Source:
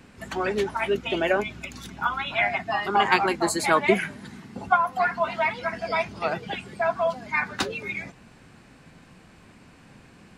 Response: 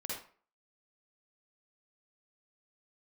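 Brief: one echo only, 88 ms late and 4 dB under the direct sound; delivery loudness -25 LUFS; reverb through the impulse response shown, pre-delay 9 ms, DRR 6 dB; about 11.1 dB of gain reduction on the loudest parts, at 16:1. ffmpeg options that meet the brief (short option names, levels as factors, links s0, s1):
-filter_complex "[0:a]acompressor=threshold=0.0562:ratio=16,aecho=1:1:88:0.631,asplit=2[s0][s1];[1:a]atrim=start_sample=2205,adelay=9[s2];[s1][s2]afir=irnorm=-1:irlink=0,volume=0.447[s3];[s0][s3]amix=inputs=2:normalize=0,volume=1.58"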